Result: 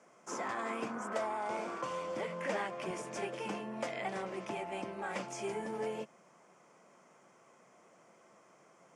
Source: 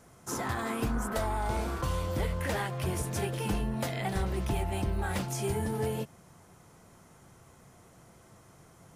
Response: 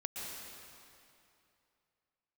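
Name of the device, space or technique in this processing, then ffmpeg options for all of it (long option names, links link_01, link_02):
television speaker: -filter_complex "[0:a]highpass=frequency=210:width=0.5412,highpass=frequency=210:width=1.3066,equalizer=frequency=270:width_type=q:width=4:gain=-4,equalizer=frequency=580:width_type=q:width=4:gain=6,equalizer=frequency=1100:width_type=q:width=4:gain=4,equalizer=frequency=2300:width_type=q:width=4:gain=5,equalizer=frequency=4000:width_type=q:width=4:gain=-9,lowpass=frequency=7600:width=0.5412,lowpass=frequency=7600:width=1.3066,asettb=1/sr,asplit=3[link_01][link_02][link_03];[link_01]atrim=end=2.274[link_04];[link_02]atrim=start=2.27:end=2.91,asetpts=PTS-STARTPTS,afade=type=in:duration=0.004:curve=qsin,afade=type=out:start_time=0.636:duration=0.004:curve=qsin,lowshelf=frequency=140:width_type=q:width=3:gain=-6.5[link_05];[link_03]atrim=start=2.906[link_06];[link_04][link_05]acrossfade=duration=0.004:curve1=hsin:curve2=qsin[link_07];[link_07][link_06]acrossfade=duration=0.004:curve1=qsin:curve2=hsin,volume=-5dB"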